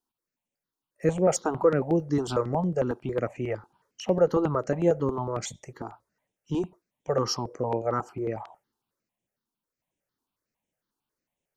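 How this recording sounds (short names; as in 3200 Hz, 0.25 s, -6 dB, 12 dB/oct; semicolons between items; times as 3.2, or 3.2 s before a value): notches that jump at a steady rate 11 Hz 570–4500 Hz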